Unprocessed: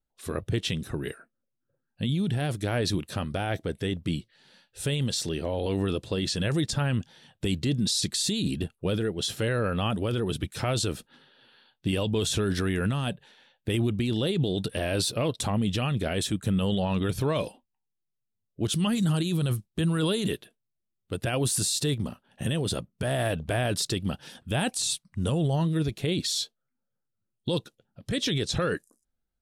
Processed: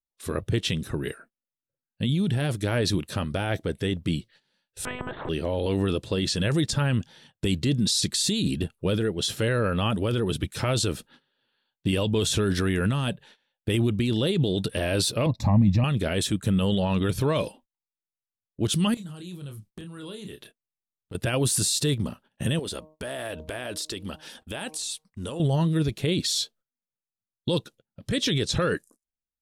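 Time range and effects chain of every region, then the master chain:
0:04.85–0:05.29: low-pass filter 1,200 Hz 24 dB per octave + one-pitch LPC vocoder at 8 kHz 250 Hz + every bin compressed towards the loudest bin 10 to 1
0:15.26–0:15.84: tilt shelving filter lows +8 dB, about 1,100 Hz + phaser with its sweep stopped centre 2,100 Hz, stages 8
0:18.94–0:21.15: downward compressor 16 to 1, threshold −38 dBFS + double-tracking delay 28 ms −7 dB
0:22.59–0:25.40: parametric band 130 Hz −14.5 dB 1.1 octaves + hum removal 155.4 Hz, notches 7 + downward compressor 3 to 1, threshold −33 dBFS
whole clip: notch filter 730 Hz, Q 12; noise gate −53 dBFS, range −18 dB; level +2.5 dB

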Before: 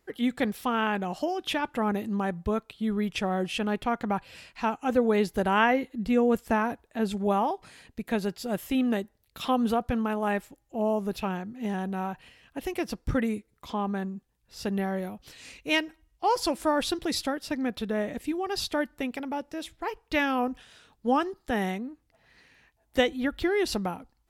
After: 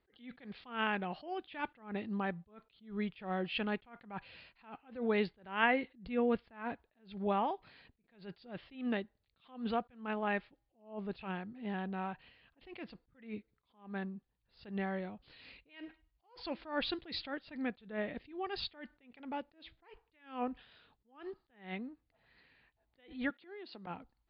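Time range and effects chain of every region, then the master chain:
0:23.30–0:23.87: high-pass filter 210 Hz 24 dB per octave + downward compressor 10 to 1, threshold −37 dBFS
whole clip: dynamic equaliser 2,300 Hz, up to +6 dB, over −45 dBFS, Q 1; Butterworth low-pass 4,700 Hz 96 dB per octave; level that may rise only so fast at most 150 dB per second; level −8 dB

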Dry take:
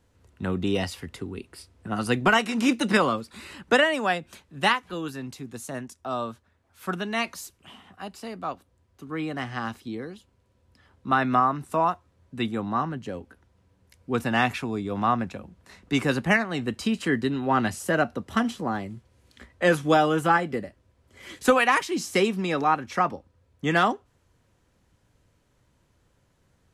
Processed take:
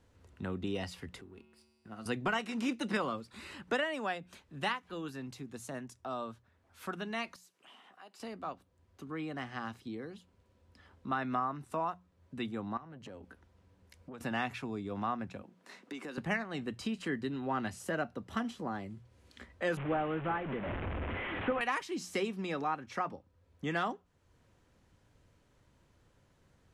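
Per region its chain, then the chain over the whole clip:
0:01.21–0:02.06: mu-law and A-law mismatch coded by A + tuned comb filter 74 Hz, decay 1.9 s, harmonics odd, mix 80%
0:07.36–0:08.20: high-pass filter 400 Hz + downward compressor 2 to 1, threshold −58 dBFS
0:12.77–0:14.21: downward compressor 5 to 1, threshold −38 dBFS + saturating transformer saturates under 670 Hz
0:15.42–0:16.18: high-pass filter 210 Hz 24 dB per octave + downward compressor, threshold −33 dBFS
0:19.77–0:21.61: linear delta modulator 16 kbit/s, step −24.5 dBFS + upward compression, threshold −23 dBFS + high-frequency loss of the air 200 metres
whole clip: high-shelf EQ 9,100 Hz −8 dB; mains-hum notches 60/120/180 Hz; downward compressor 1.5 to 1, threshold −49 dBFS; level −1 dB

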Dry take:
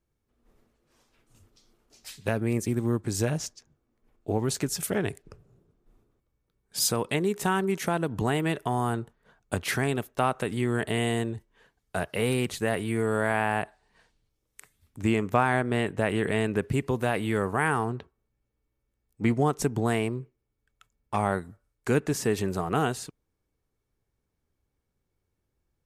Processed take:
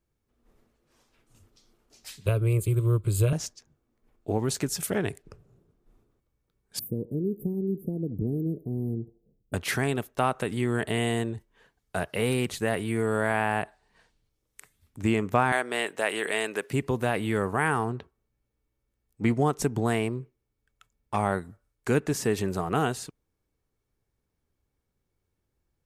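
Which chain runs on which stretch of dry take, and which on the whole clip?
0:02.26–0:03.33: bass and treble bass +11 dB, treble +6 dB + phaser with its sweep stopped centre 1,200 Hz, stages 8
0:06.79–0:09.54: inverse Chebyshev band-stop filter 1,500–4,800 Hz, stop band 80 dB + parametric band 500 Hz +4.5 dB 0.49 octaves + feedback echo with a band-pass in the loop 79 ms, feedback 47%, band-pass 780 Hz, level −14.5 dB
0:15.52–0:16.73: high-pass filter 450 Hz + high-shelf EQ 2,500 Hz +8 dB
whole clip: no processing

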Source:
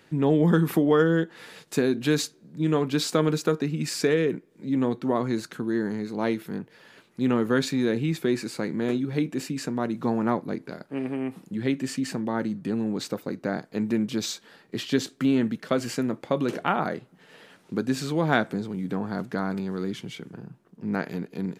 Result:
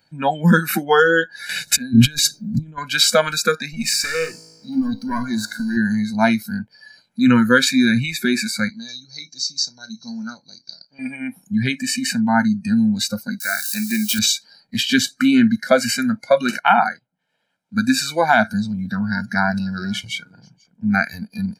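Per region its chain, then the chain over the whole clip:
0:01.49–0:02.78: compressor whose output falls as the input rises −34 dBFS + low-shelf EQ 370 Hz +11 dB
0:03.73–0:05.77: leveller curve on the samples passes 2 + tuned comb filter 54 Hz, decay 1.8 s, mix 70%
0:08.69–0:10.99: transistor ladder low-pass 6,100 Hz, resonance 85% + parametric band 4,300 Hz +13.5 dB 0.41 octaves + double-tracking delay 31 ms −14 dB
0:13.40–0:14.19: spike at every zero crossing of −26 dBFS + high-pass filter 42 Hz + low-shelf EQ 360 Hz −10.5 dB
0:16.59–0:17.77: low-shelf EQ 150 Hz −4 dB + expander for the loud parts, over −46 dBFS
0:18.62–0:20.88: single-tap delay 486 ms −17 dB + highs frequency-modulated by the lows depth 0.14 ms
whole clip: noise reduction from a noise print of the clip's start 22 dB; comb filter 1.3 ms, depth 78%; boost into a limiter +13 dB; level −1 dB

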